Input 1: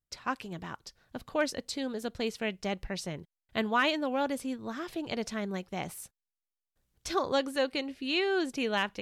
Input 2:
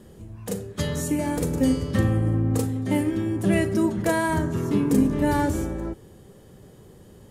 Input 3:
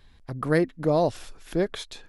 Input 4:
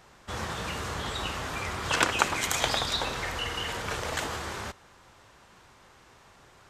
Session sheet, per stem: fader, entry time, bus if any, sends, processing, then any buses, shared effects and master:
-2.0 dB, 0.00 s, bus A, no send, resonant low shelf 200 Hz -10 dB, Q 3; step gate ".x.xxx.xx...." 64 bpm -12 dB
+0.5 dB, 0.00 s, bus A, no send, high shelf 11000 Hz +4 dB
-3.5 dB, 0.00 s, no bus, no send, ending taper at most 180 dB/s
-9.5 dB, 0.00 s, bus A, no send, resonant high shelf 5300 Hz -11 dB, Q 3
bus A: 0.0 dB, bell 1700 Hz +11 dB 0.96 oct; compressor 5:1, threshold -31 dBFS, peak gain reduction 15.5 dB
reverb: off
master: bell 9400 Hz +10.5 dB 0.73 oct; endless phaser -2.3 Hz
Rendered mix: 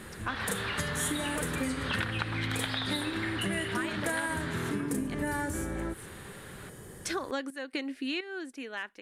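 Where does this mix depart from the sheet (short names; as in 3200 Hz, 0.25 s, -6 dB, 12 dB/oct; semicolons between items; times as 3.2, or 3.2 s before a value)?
stem 3: muted; stem 4 -9.5 dB -> -1.0 dB; master: missing endless phaser -2.3 Hz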